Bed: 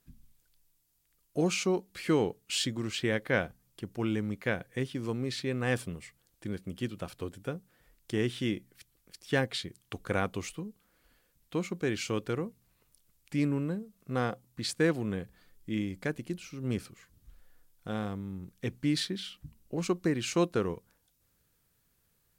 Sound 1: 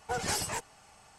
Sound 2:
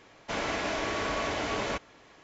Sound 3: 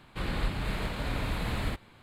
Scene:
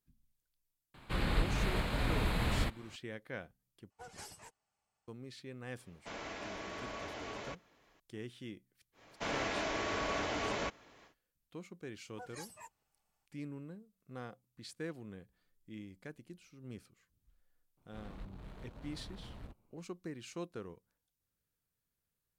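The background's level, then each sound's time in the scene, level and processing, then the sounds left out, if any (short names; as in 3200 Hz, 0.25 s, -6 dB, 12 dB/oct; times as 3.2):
bed -15.5 dB
0.94 add 3 -1 dB
3.9 replace with 1 -17.5 dB + upward expander, over -53 dBFS
5.77 add 2 -13 dB
8.92 add 2 -5 dB, fades 0.10 s
12.08 add 1 -13 dB + spectral noise reduction 15 dB
17.77 add 3 -17.5 dB + Wiener smoothing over 25 samples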